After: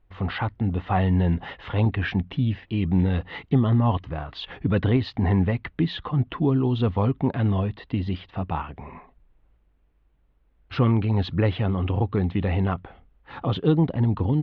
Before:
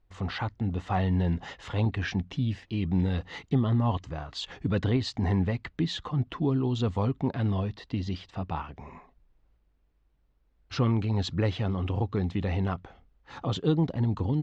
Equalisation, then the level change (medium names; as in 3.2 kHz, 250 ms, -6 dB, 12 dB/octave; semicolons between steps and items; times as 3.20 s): low-pass 3.4 kHz 24 dB/octave; +5.0 dB